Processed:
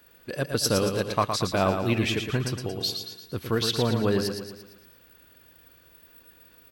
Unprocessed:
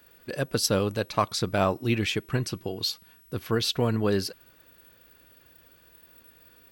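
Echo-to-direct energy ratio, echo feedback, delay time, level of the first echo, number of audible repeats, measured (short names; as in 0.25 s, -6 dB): -5.5 dB, 49%, 0.114 s, -6.5 dB, 5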